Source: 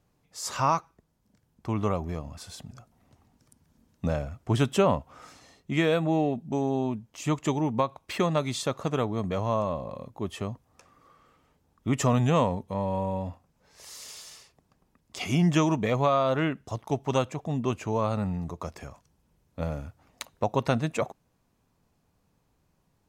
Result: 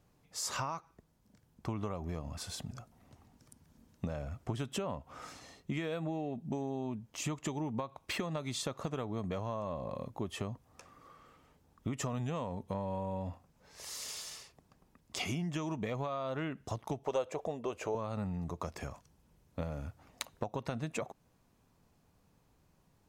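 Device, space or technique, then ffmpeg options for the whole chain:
serial compression, leveller first: -filter_complex "[0:a]acompressor=threshold=-26dB:ratio=2.5,acompressor=threshold=-35dB:ratio=6,asettb=1/sr,asplit=3[a][b][c];[a]atrim=end=17.034[d];[b]atrim=start=17.03:end=17.95,asetpts=PTS-STARTPTS,afade=t=in:d=0.004:c=qsin,afade=t=out:st=0.916:d=0.004:c=qsin,equalizer=f=125:t=o:w=1:g=-11,equalizer=f=250:t=o:w=1:g=-7,equalizer=f=500:t=o:w=1:g=11[e];[c]atrim=start=17.946[f];[d][e]acrossfade=d=0.004:c1=hsin:c2=qsin[g];[g][f]acrossfade=d=0.004:c1=qsin:c2=hsin,volume=1dB"

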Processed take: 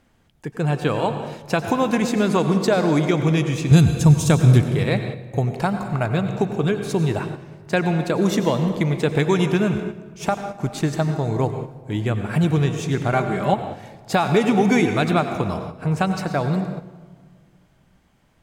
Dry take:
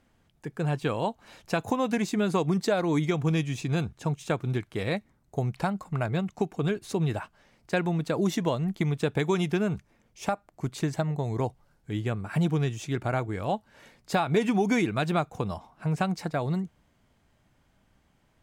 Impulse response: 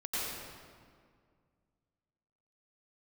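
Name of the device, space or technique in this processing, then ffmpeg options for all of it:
keyed gated reverb: -filter_complex "[0:a]asettb=1/sr,asplit=3[a][b][c];[a]atrim=end=3.714[d];[b]atrim=start=3.71:end=4.64,asetpts=PTS-STARTPTS,afade=t=in:d=0.004:c=qsin,afade=t=out:st=0.926:d=0.004:c=qsin,bass=f=250:g=12,treble=f=4k:g=14[e];[c]atrim=start=4.636[f];[d][e]acrossfade=d=0.004:c1=hsin:c2=qsin[g];[g][f]acrossfade=d=0.004:c1=qsin:c2=hsin,asplit=3[h][i][j];[1:a]atrim=start_sample=2205[k];[i][k]afir=irnorm=-1:irlink=0[l];[j]apad=whole_len=812375[m];[l][m]sidechaingate=range=-8dB:threshold=-49dB:ratio=16:detection=peak,volume=-10.5dB[n];[h][n]amix=inputs=2:normalize=0,asettb=1/sr,asplit=3[o][p][q];[o]atrim=end=13.124[r];[p]atrim=start=13.12:end=13.54,asetpts=PTS-STARTPTS,afade=t=in:d=0.004:c=qsin,afade=t=out:st=0.416:d=0.004:c=qsin,aecho=1:1:5.1:0.78,atrim=end_sample=18522[s];[q]atrim=start=13.536[t];[r][s]acrossfade=d=0.004:c1=hsin:c2=qsin[u];[u][t]acrossfade=d=0.004:c1=qsin:c2=hsin,volume=5dB"

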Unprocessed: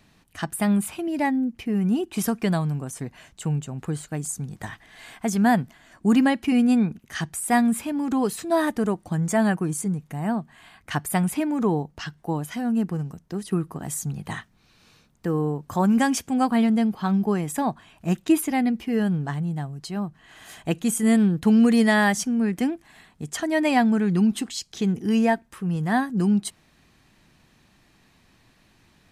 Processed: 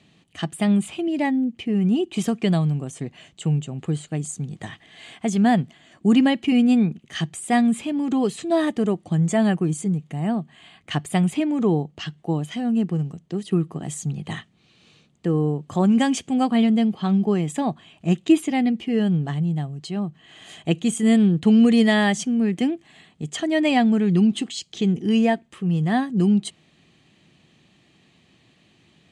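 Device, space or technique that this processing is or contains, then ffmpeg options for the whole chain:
car door speaker: -af "highpass=99,equalizer=f=160:t=q:w=4:g=4,equalizer=f=360:t=q:w=4:g=3,equalizer=f=960:t=q:w=4:g=-7,equalizer=f=1.5k:t=q:w=4:g=-8,equalizer=f=3.1k:t=q:w=4:g=6,equalizer=f=5.4k:t=q:w=4:g=-7,lowpass=f=8.2k:w=0.5412,lowpass=f=8.2k:w=1.3066,volume=1.5dB"

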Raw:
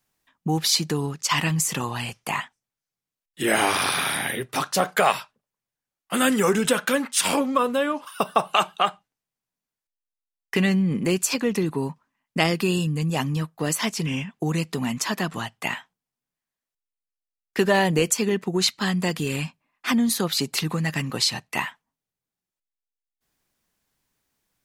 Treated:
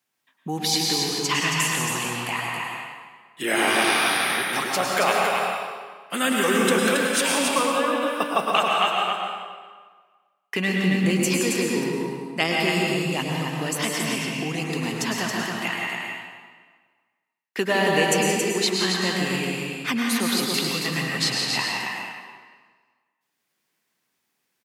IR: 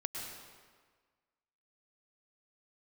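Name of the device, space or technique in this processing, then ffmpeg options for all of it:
stadium PA: -filter_complex "[0:a]highpass=190,equalizer=f=2.5k:t=o:w=1.3:g=4,aecho=1:1:174.9|274.1:0.316|0.562[a];[1:a]atrim=start_sample=2205[b];[a][b]afir=irnorm=-1:irlink=0,volume=-2dB"

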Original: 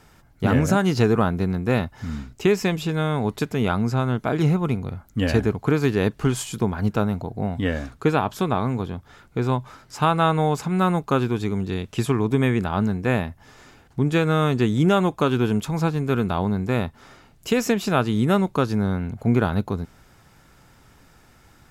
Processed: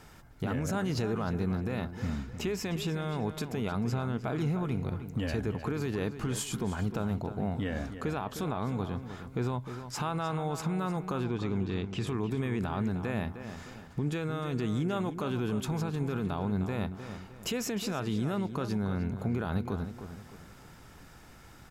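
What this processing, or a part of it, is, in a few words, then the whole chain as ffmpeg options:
stacked limiters: -filter_complex "[0:a]asettb=1/sr,asplit=3[a][b][c];[a]atrim=end=11.244[d];[b]atrim=start=11.24:end=12.07,asetpts=PTS-STARTPTS,afade=t=in:d=0.004:c=qsin,afade=t=out:st=0.826:d=0.004:c=qsin,lowpass=5.3k[e];[c]atrim=start=12.066[f];[d][e]acrossfade=d=0.004:c1=hsin:c2=qsin[g];[g][f]acrossfade=d=0.004:c1=qsin:c2=hsin,alimiter=limit=-11dB:level=0:latency=1:release=118,alimiter=limit=-17dB:level=0:latency=1:release=21,alimiter=limit=-23.5dB:level=0:latency=1:release=435,asplit=2[h][i];[i]adelay=307,lowpass=f=3.6k:p=1,volume=-10dB,asplit=2[j][k];[k]adelay=307,lowpass=f=3.6k:p=1,volume=0.4,asplit=2[l][m];[m]adelay=307,lowpass=f=3.6k:p=1,volume=0.4,asplit=2[n][o];[o]adelay=307,lowpass=f=3.6k:p=1,volume=0.4[p];[h][j][l][n][p]amix=inputs=5:normalize=0"

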